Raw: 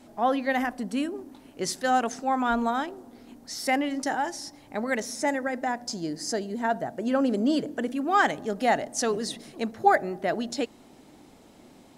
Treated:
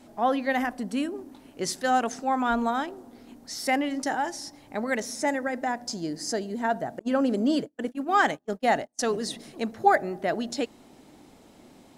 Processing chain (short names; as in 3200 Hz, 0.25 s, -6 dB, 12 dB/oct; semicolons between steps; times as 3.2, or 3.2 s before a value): 6.99–9.18 gate -28 dBFS, range -37 dB